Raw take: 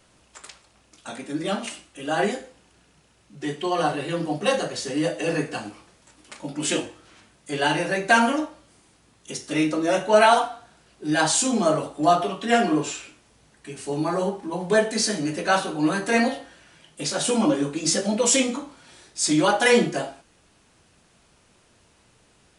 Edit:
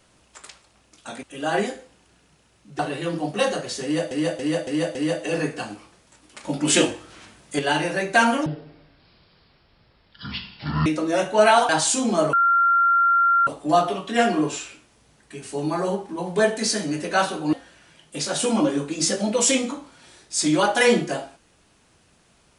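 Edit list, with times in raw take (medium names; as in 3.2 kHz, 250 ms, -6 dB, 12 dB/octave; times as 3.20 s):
1.23–1.88 s: delete
3.44–3.86 s: delete
4.90–5.18 s: loop, 5 plays
6.39–7.54 s: gain +6.5 dB
8.41–9.61 s: speed 50%
10.44–11.17 s: delete
11.81 s: add tone 1.38 kHz -14.5 dBFS 1.14 s
15.87–16.38 s: delete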